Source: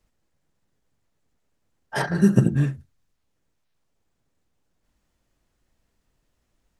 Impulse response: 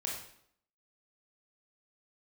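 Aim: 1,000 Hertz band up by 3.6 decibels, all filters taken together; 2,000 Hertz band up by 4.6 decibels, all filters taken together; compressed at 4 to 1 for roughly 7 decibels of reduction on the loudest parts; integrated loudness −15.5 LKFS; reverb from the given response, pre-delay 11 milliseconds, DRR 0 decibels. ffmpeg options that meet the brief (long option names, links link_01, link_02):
-filter_complex "[0:a]equalizer=frequency=1000:width_type=o:gain=3.5,equalizer=frequency=2000:width_type=o:gain=4.5,acompressor=threshold=-20dB:ratio=4,asplit=2[link_01][link_02];[1:a]atrim=start_sample=2205,adelay=11[link_03];[link_02][link_03]afir=irnorm=-1:irlink=0,volume=-2dB[link_04];[link_01][link_04]amix=inputs=2:normalize=0,volume=8dB"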